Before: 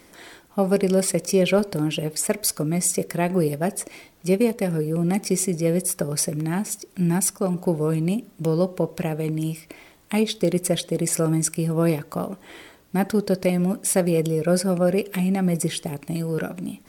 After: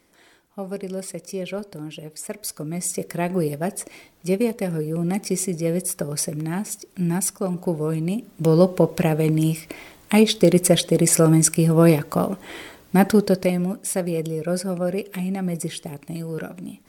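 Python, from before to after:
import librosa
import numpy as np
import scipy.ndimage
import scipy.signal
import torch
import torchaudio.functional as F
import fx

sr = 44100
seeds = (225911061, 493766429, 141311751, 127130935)

y = fx.gain(x, sr, db=fx.line((2.11, -10.5), (3.2, -1.5), (8.12, -1.5), (8.57, 6.0), (13.11, 6.0), (13.78, -4.0)))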